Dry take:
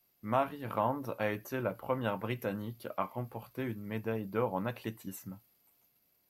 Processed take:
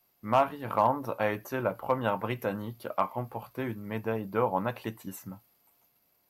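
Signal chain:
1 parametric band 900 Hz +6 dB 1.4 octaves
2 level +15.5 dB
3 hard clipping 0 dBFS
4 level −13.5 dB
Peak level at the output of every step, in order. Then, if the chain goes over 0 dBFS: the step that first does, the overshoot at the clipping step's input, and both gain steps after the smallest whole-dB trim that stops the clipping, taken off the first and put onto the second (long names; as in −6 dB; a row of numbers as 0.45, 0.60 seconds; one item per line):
−11.5, +4.0, 0.0, −13.5 dBFS
step 2, 4.0 dB
step 2 +11.5 dB, step 4 −9.5 dB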